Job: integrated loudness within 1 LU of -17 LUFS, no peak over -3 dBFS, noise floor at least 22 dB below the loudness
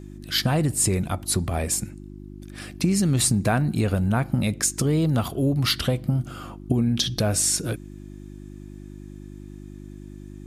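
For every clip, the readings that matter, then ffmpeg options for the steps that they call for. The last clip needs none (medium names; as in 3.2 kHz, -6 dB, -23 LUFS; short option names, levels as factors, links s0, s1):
hum 50 Hz; highest harmonic 350 Hz; hum level -40 dBFS; loudness -23.0 LUFS; peak level -7.5 dBFS; loudness target -17.0 LUFS
-> -af "bandreject=f=50:t=h:w=4,bandreject=f=100:t=h:w=4,bandreject=f=150:t=h:w=4,bandreject=f=200:t=h:w=4,bandreject=f=250:t=h:w=4,bandreject=f=300:t=h:w=4,bandreject=f=350:t=h:w=4"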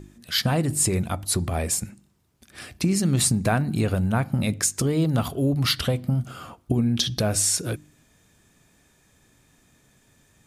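hum not found; loudness -23.5 LUFS; peak level -7.5 dBFS; loudness target -17.0 LUFS
-> -af "volume=2.11,alimiter=limit=0.708:level=0:latency=1"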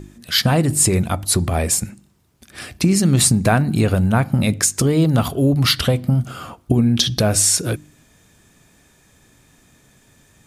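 loudness -17.0 LUFS; peak level -3.0 dBFS; noise floor -55 dBFS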